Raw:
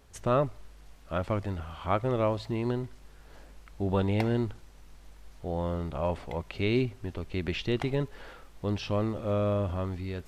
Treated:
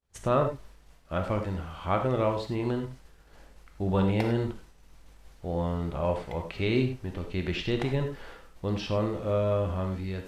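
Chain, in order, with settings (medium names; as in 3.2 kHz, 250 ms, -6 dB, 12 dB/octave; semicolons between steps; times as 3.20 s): expander -45 dBFS; gated-style reverb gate 120 ms flat, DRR 4 dB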